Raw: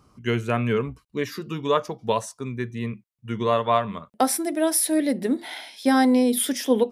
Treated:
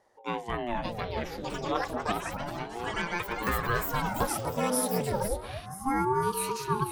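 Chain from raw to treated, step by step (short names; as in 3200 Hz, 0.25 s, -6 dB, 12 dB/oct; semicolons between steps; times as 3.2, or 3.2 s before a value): on a send: echo with dull and thin repeats by turns 0.245 s, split 1200 Hz, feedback 74%, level -7 dB; on the sum: echoes that change speed 0.662 s, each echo +7 st, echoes 2; spectral gain 5.66–6.23, 1700–5500 Hz -21 dB; ring modulator with a swept carrier 410 Hz, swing 70%, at 0.31 Hz; gain -6.5 dB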